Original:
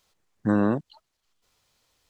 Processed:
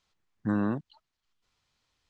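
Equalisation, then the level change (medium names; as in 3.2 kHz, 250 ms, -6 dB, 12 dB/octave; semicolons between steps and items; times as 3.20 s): distance through air 79 m; peaking EQ 530 Hz -6.5 dB 1.1 oct; -4.0 dB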